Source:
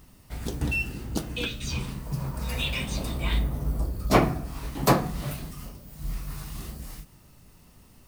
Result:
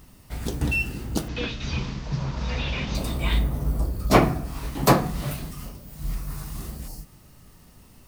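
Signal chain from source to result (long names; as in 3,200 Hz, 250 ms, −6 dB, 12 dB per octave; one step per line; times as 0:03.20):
0:01.28–0:02.95: linear delta modulator 32 kbit/s, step −39.5 dBFS
0:06.15–0:06.73: parametric band 3,000 Hz −5 dB 1.4 octaves
0:06.90–0:07.74: healed spectral selection 950–4,100 Hz after
level +3 dB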